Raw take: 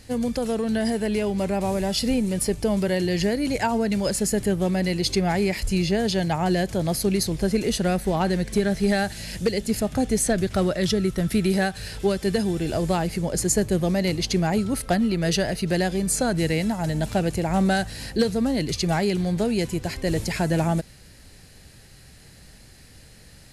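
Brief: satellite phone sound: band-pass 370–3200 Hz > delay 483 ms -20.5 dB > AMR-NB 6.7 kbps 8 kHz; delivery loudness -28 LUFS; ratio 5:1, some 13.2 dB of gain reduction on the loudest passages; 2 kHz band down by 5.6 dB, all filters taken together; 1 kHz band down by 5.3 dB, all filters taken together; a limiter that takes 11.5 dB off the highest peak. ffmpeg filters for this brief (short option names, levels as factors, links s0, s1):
-af "equalizer=f=1000:t=o:g=-7,equalizer=f=2000:t=o:g=-4,acompressor=threshold=0.0224:ratio=5,alimiter=level_in=2.66:limit=0.0631:level=0:latency=1,volume=0.376,highpass=370,lowpass=3200,aecho=1:1:483:0.0944,volume=10" -ar 8000 -c:a libopencore_amrnb -b:a 6700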